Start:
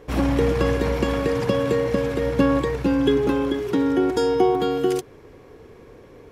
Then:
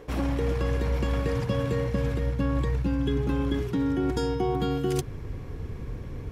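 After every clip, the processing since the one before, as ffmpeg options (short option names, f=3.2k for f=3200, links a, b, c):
-af "asubboost=boost=7.5:cutoff=160,areverse,acompressor=threshold=-26dB:ratio=6,areverse,volume=2.5dB"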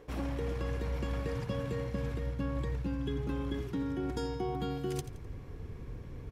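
-af "aecho=1:1:85|170|255|340:0.2|0.0798|0.0319|0.0128,volume=-8dB"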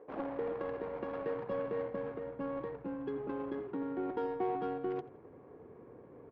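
-af "highpass=460,lowpass=4.1k,adynamicsmooth=sensitivity=3:basefreq=780,aemphasis=mode=reproduction:type=50fm,volume=6dB"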